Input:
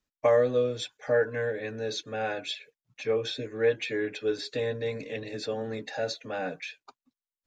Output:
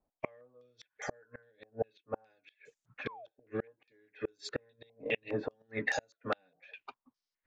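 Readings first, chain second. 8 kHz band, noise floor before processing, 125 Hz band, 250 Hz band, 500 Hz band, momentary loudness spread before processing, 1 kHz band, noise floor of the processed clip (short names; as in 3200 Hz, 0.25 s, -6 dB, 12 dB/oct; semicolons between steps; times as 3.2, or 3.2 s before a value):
-7.5 dB, under -85 dBFS, -11.0 dB, -8.0 dB, -13.5 dB, 11 LU, -7.5 dB, under -85 dBFS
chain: flipped gate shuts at -25 dBFS, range -39 dB; painted sound fall, 3.06–3.26, 570–1200 Hz -51 dBFS; stepped low-pass 4.9 Hz 740–7000 Hz; gain +2 dB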